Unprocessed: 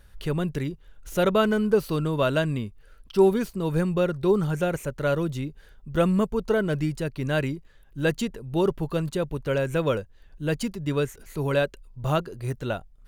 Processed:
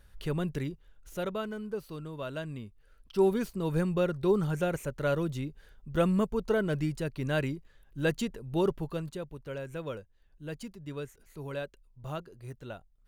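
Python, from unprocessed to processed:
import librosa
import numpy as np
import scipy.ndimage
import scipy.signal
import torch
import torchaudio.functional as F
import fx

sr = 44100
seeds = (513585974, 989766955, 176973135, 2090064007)

y = fx.gain(x, sr, db=fx.line((0.64, -5.0), (1.49, -15.0), (2.22, -15.0), (3.45, -4.5), (8.68, -4.5), (9.33, -13.5)))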